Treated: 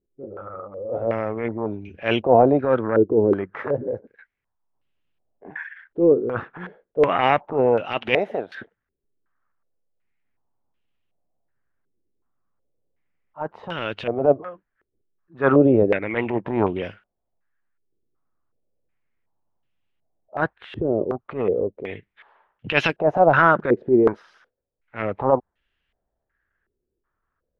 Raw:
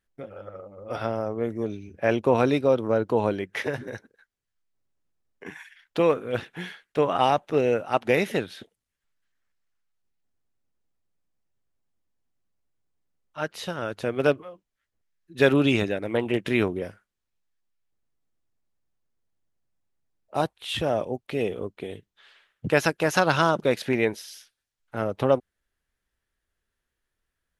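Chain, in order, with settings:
0:08.15–0:08.55: spectral tilt +4.5 dB per octave
transient designer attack −11 dB, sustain +1 dB
low-pass on a step sequencer 2.7 Hz 390–2,900 Hz
level +3 dB

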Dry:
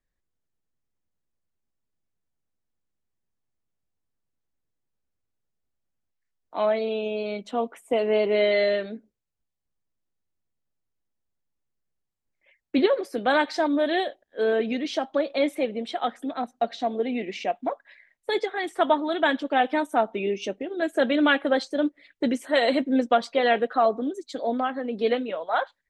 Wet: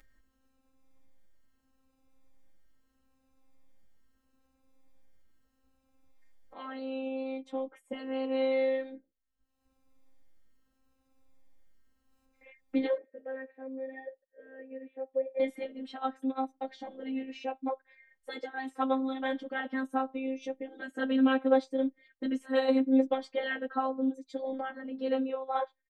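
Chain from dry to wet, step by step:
high-shelf EQ 2,400 Hz −11 dB
notch filter 700 Hz, Q 12
upward compression, threshold −39 dBFS
0:12.97–0:15.40: formant resonators in series e
phases set to zero 264 Hz
barber-pole flanger 6.6 ms +0.77 Hz

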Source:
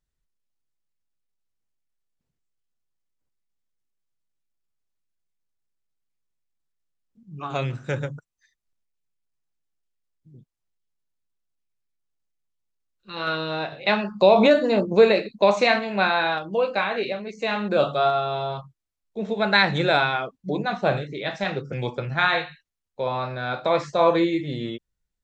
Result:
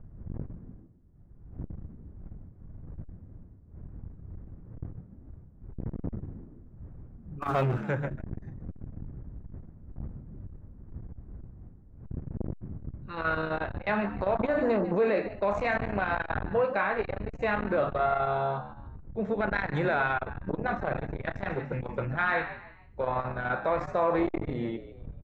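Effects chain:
wind on the microphone 89 Hz −34 dBFS
high shelf with overshoot 2,500 Hz −11.5 dB, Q 1.5
0:07.42–0:07.84: leveller curve on the samples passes 2
brickwall limiter −15.5 dBFS, peak gain reduction 11.5 dB
echo with shifted repeats 147 ms, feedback 36%, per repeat +78 Hz, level −14 dB
saturating transformer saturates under 350 Hz
level −1.5 dB

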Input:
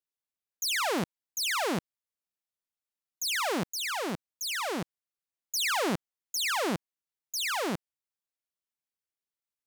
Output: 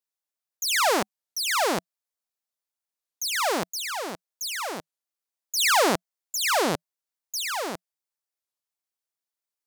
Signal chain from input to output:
noise gate −29 dBFS, range −8 dB
drawn EQ curve 180 Hz 0 dB, 660 Hz +11 dB, 2,900 Hz +7 dB, 4,700 Hz +11 dB
wow of a warped record 33 1/3 rpm, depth 250 cents

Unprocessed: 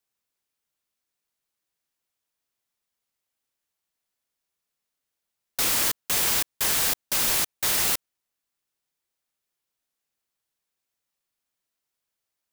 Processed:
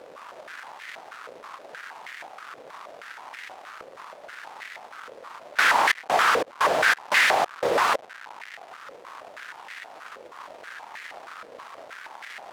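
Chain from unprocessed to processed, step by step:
each half-wave held at its own peak
upward compression, threshold −34 dBFS
surface crackle 430 per second −36 dBFS
boost into a limiter +20.5 dB
band-pass on a step sequencer 6.3 Hz 510–1,900 Hz
level +2 dB

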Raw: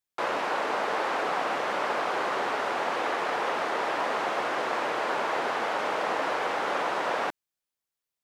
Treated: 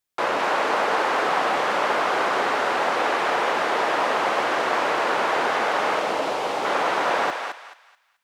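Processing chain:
0:05.99–0:06.65: parametric band 1,600 Hz −9 dB 1.2 octaves
on a send: feedback echo with a high-pass in the loop 216 ms, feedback 31%, high-pass 910 Hz, level −4 dB
on the sum: level +5.5 dB

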